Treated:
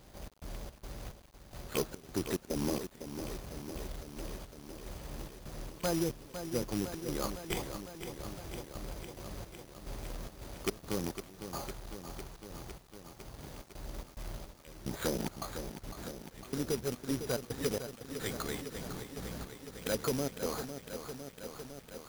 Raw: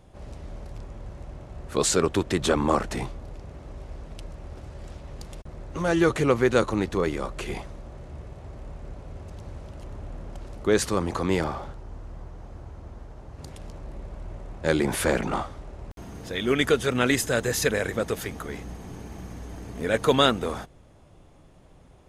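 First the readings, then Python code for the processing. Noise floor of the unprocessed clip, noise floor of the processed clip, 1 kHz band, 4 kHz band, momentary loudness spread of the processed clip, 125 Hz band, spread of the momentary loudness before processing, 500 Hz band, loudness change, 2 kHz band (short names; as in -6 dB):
-53 dBFS, -56 dBFS, -14.0 dB, -11.5 dB, 13 LU, -10.0 dB, 20 LU, -12.5 dB, -14.5 dB, -15.5 dB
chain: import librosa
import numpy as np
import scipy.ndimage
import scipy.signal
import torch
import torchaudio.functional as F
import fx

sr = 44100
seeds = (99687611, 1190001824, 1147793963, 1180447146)

y = fx.rattle_buzz(x, sr, strikes_db=-27.0, level_db=-11.0)
y = fx.env_lowpass_down(y, sr, base_hz=390.0, full_db=-17.5)
y = fx.peak_eq(y, sr, hz=80.0, db=-9.0, octaves=0.4)
y = np.repeat(scipy.signal.resample_poly(y, 1, 8), 8)[:len(y)]
y = fx.rider(y, sr, range_db=3, speed_s=0.5)
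y = fx.high_shelf(y, sr, hz=3500.0, db=7.5)
y = fx.step_gate(y, sr, bpm=108, pattern='xx.xx.xx...x', floor_db=-24.0, edge_ms=4.5)
y = fx.vibrato(y, sr, rate_hz=5.3, depth_cents=39.0)
y = np.clip(y, -10.0 ** (-15.5 / 20.0), 10.0 ** (-15.5 / 20.0))
y = fx.notch(y, sr, hz=5200.0, q=27.0)
y = fx.quant_companded(y, sr, bits=4)
y = fx.echo_crushed(y, sr, ms=505, feedback_pct=80, bits=8, wet_db=-9)
y = y * 10.0 ** (-7.0 / 20.0)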